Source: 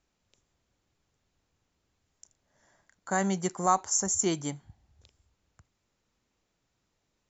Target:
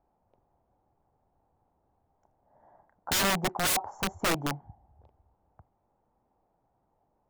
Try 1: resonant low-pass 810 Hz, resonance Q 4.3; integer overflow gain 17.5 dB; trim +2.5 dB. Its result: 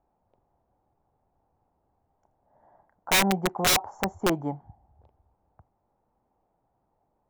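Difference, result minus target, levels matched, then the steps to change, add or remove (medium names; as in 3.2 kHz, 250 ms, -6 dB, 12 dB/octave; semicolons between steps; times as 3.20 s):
integer overflow: distortion -6 dB
change: integer overflow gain 23.5 dB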